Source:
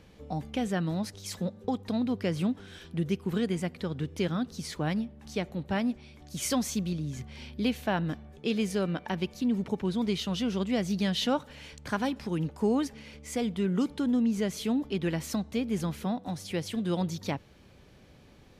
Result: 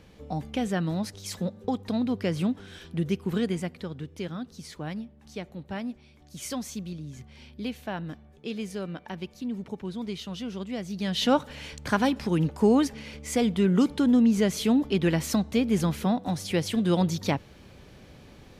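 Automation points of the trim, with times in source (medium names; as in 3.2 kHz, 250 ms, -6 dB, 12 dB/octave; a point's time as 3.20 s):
3.46 s +2 dB
4.09 s -5 dB
10.92 s -5 dB
11.33 s +6 dB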